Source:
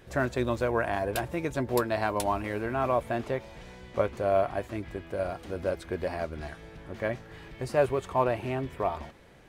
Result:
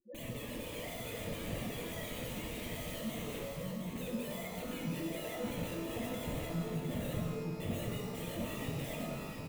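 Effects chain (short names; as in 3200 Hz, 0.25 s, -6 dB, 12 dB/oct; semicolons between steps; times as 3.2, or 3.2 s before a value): expander -41 dBFS; HPF 150 Hz 24 dB/oct; loudest bins only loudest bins 1; tilt -4 dB/oct; compressor 20:1, threshold -37 dBFS, peak gain reduction 16.5 dB; wrapped overs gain 45 dB; resonant low shelf 600 Hz +13.5 dB, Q 3; fixed phaser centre 1400 Hz, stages 6; on a send: echo 0.708 s -5.5 dB; on the sum: shimmer reverb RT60 1.5 s, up +12 st, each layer -8 dB, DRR -1 dB; gain +2.5 dB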